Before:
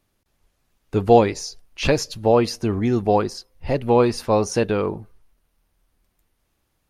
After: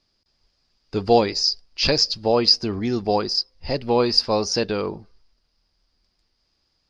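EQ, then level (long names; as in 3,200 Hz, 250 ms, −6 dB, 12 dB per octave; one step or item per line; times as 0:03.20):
low-pass with resonance 4,900 Hz, resonance Q 12
parametric band 110 Hz −4.5 dB 0.43 octaves
−3.0 dB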